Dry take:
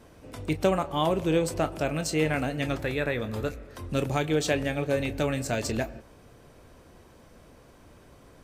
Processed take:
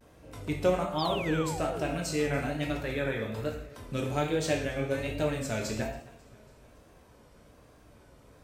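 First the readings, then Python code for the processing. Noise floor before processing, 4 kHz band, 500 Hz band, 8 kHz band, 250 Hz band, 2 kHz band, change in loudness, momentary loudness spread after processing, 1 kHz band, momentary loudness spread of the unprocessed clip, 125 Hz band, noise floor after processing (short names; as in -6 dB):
-54 dBFS, -2.5 dB, -3.0 dB, -3.5 dB, -3.5 dB, -3.0 dB, -3.0 dB, 9 LU, -2.5 dB, 7 LU, -3.0 dB, -57 dBFS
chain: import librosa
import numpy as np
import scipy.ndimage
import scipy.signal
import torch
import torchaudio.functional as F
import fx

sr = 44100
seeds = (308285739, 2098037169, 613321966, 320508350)

p1 = fx.rev_gated(x, sr, seeds[0], gate_ms=220, shape='falling', drr_db=0.0)
p2 = fx.spec_paint(p1, sr, seeds[1], shape='fall', start_s=0.98, length_s=0.98, low_hz=230.0, high_hz=5100.0, level_db=-33.0)
p3 = p2 + fx.echo_feedback(p2, sr, ms=275, feedback_pct=59, wet_db=-23, dry=0)
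p4 = fx.vibrato(p3, sr, rate_hz=1.2, depth_cents=84.0)
y = F.gain(torch.from_numpy(p4), -6.5).numpy()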